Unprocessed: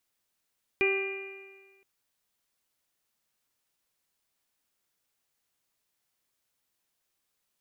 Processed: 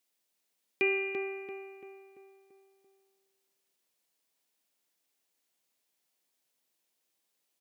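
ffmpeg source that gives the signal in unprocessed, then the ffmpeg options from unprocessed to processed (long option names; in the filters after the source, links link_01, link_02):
-f lavfi -i "aevalsrc='0.0631*pow(10,-3*t/1.47)*sin(2*PI*388.35*t)+0.0112*pow(10,-3*t/1.47)*sin(2*PI*778.79*t)+0.00891*pow(10,-3*t/1.47)*sin(2*PI*1173.39*t)+0.00794*pow(10,-3*t/1.47)*sin(2*PI*1574.19*t)+0.0158*pow(10,-3*t/1.47)*sin(2*PI*1983.17*t)+0.0668*pow(10,-3*t/1.47)*sin(2*PI*2402.24*t)+0.0075*pow(10,-3*t/1.47)*sin(2*PI*2833.24*t)':duration=1.02:sample_rate=44100"
-filter_complex "[0:a]highpass=220,equalizer=frequency=1300:width_type=o:width=1:gain=-6,asplit=2[link_01][link_02];[link_02]adelay=339,lowpass=frequency=2200:poles=1,volume=-4dB,asplit=2[link_03][link_04];[link_04]adelay=339,lowpass=frequency=2200:poles=1,volume=0.5,asplit=2[link_05][link_06];[link_06]adelay=339,lowpass=frequency=2200:poles=1,volume=0.5,asplit=2[link_07][link_08];[link_08]adelay=339,lowpass=frequency=2200:poles=1,volume=0.5,asplit=2[link_09][link_10];[link_10]adelay=339,lowpass=frequency=2200:poles=1,volume=0.5,asplit=2[link_11][link_12];[link_12]adelay=339,lowpass=frequency=2200:poles=1,volume=0.5[link_13];[link_03][link_05][link_07][link_09][link_11][link_13]amix=inputs=6:normalize=0[link_14];[link_01][link_14]amix=inputs=2:normalize=0"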